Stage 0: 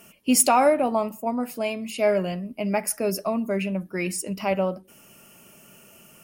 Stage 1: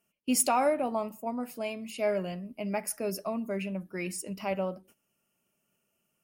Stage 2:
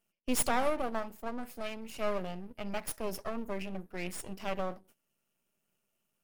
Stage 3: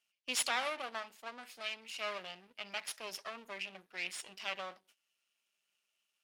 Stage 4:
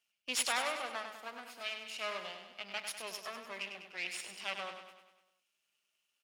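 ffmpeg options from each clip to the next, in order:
-af "agate=range=-19dB:threshold=-47dB:ratio=16:detection=peak,volume=-7.5dB"
-af "aeval=exprs='max(val(0),0)':c=same"
-af "bandpass=f=3.5k:t=q:w=1.1:csg=0,volume=6.5dB"
-af "aecho=1:1:99|198|297|396|495|594|693:0.422|0.228|0.123|0.0664|0.0359|0.0194|0.0105"

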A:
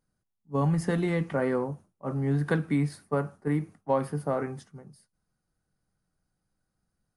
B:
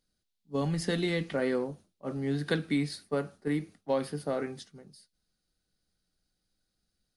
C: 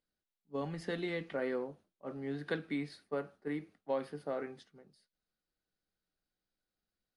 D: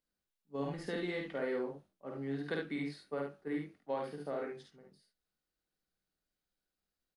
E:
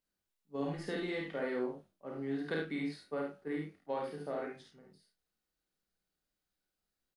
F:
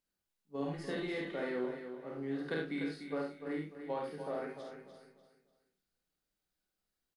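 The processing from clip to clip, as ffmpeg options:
-af "equalizer=f=125:t=o:w=1:g=-9,equalizer=f=1k:t=o:w=1:g=-9,equalizer=f=4k:t=o:w=1:g=12"
-af "bass=f=250:g=-8,treble=f=4k:g=-13,volume=-5dB"
-af "aecho=1:1:51|72:0.668|0.531,volume=-2.5dB"
-filter_complex "[0:a]asplit=2[a][b];[b]adelay=32,volume=-6dB[c];[a][c]amix=inputs=2:normalize=0"
-af "aecho=1:1:295|590|885|1180:0.355|0.114|0.0363|0.0116,volume=-1dB"

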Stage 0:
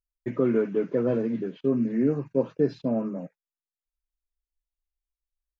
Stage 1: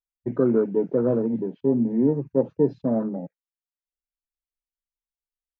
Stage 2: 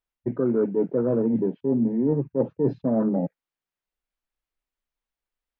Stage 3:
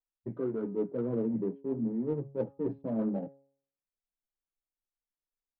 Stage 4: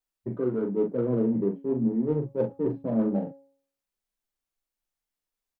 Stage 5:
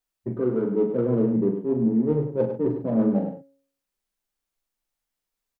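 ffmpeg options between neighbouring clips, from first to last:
-af "afwtdn=0.0178,volume=3dB"
-af "bass=f=250:g=0,treble=f=4k:g=-12,areverse,acompressor=threshold=-29dB:ratio=6,areverse,volume=9dB"
-af "flanger=delay=8.7:depth=2:regen=-21:speed=0.93:shape=triangular,bandreject=f=137.8:t=h:w=4,bandreject=f=275.6:t=h:w=4,bandreject=f=413.4:t=h:w=4,bandreject=f=551.2:t=h:w=4,bandreject=f=689:t=h:w=4,bandreject=f=826.8:t=h:w=4,bandreject=f=964.6:t=h:w=4,bandreject=f=1.1024k:t=h:w=4,bandreject=f=1.2402k:t=h:w=4,bandreject=f=1.378k:t=h:w=4,adynamicsmooth=sensitivity=3:basefreq=1.6k,volume=-6dB"
-filter_complex "[0:a]asplit=2[a][b];[b]adelay=40,volume=-6dB[c];[a][c]amix=inputs=2:normalize=0,volume=5dB"
-af "aecho=1:1:101:0.376,volume=3dB"

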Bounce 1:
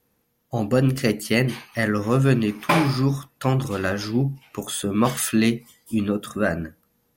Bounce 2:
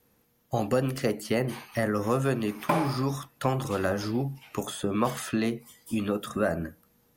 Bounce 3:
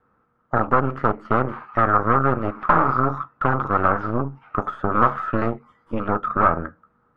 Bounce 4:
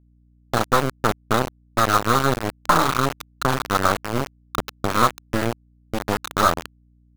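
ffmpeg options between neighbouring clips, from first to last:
-filter_complex "[0:a]acrossover=split=510|1100|7100[a][b][c][d];[a]acompressor=threshold=-31dB:ratio=4[e];[b]acompressor=threshold=-27dB:ratio=4[f];[c]acompressor=threshold=-42dB:ratio=4[g];[d]acompressor=threshold=-49dB:ratio=4[h];[e][f][g][h]amix=inputs=4:normalize=0,volume=2dB"
-af "aeval=exprs='0.282*(cos(1*acos(clip(val(0)/0.282,-1,1)))-cos(1*PI/2))+0.0891*(cos(6*acos(clip(val(0)/0.282,-1,1)))-cos(6*PI/2))':c=same,lowpass=f=1.3k:t=q:w=8.1"
-af "aeval=exprs='val(0)*gte(abs(val(0)),0.133)':c=same,aeval=exprs='val(0)+0.00178*(sin(2*PI*60*n/s)+sin(2*PI*2*60*n/s)/2+sin(2*PI*3*60*n/s)/3+sin(2*PI*4*60*n/s)/4+sin(2*PI*5*60*n/s)/5)':c=same"

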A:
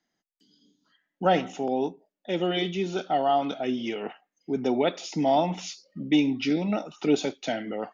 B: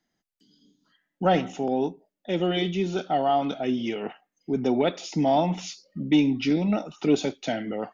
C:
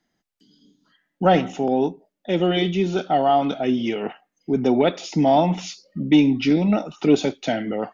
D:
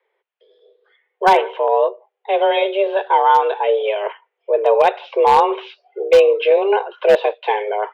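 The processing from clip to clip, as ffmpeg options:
-af "lowshelf=f=150:g=10,acontrast=41,volume=-5.5dB"
-af "highshelf=f=5.8k:g=-5,volume=5dB"
-af "highpass=f=200:t=q:w=0.5412,highpass=f=200:t=q:w=1.307,lowpass=f=3k:t=q:w=0.5176,lowpass=f=3k:t=q:w=0.7071,lowpass=f=3k:t=q:w=1.932,afreqshift=200,aeval=exprs='0.355*(abs(mod(val(0)/0.355+3,4)-2)-1)':c=same,volume=5dB"

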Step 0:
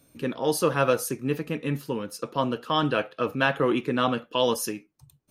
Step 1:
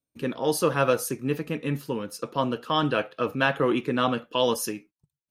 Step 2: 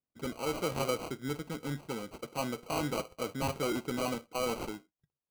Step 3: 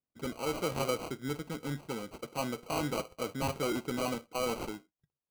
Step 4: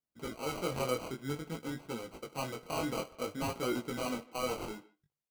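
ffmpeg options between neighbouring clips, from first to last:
-af "agate=range=-29dB:threshold=-48dB:ratio=16:detection=peak"
-af "acrusher=samples=25:mix=1:aa=0.000001,asoftclip=type=tanh:threshold=-15dB,volume=-8dB"
-af anull
-filter_complex "[0:a]flanger=delay=16.5:depth=7.4:speed=0.54,asplit=2[a][b];[b]adelay=150,highpass=300,lowpass=3.4k,asoftclip=type=hard:threshold=-32dB,volume=-20dB[c];[a][c]amix=inputs=2:normalize=0,volume=1dB"

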